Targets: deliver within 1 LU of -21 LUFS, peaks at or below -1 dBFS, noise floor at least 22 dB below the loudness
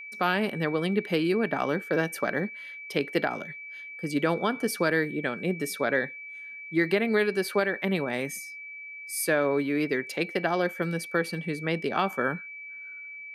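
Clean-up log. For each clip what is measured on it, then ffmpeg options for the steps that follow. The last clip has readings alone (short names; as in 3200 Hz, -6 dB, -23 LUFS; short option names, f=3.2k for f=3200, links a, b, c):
steady tone 2300 Hz; tone level -39 dBFS; loudness -28.0 LUFS; peak -12.5 dBFS; loudness target -21.0 LUFS
-> -af "bandreject=f=2.3k:w=30"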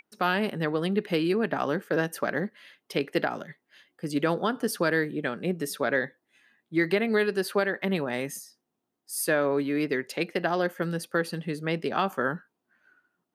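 steady tone none; loudness -28.0 LUFS; peak -12.5 dBFS; loudness target -21.0 LUFS
-> -af "volume=7dB"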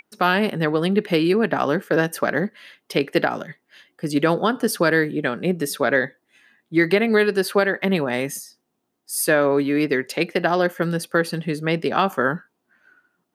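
loudness -21.0 LUFS; peak -5.5 dBFS; noise floor -74 dBFS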